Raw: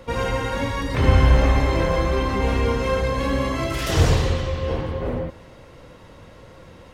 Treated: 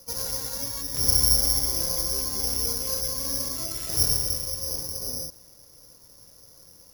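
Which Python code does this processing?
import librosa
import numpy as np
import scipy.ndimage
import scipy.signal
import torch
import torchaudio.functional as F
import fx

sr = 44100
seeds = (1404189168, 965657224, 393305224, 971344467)

y = fx.lowpass(x, sr, hz=1600.0, slope=6)
y = (np.kron(y[::8], np.eye(8)[0]) * 8)[:len(y)]
y = F.gain(torch.from_numpy(y), -15.5).numpy()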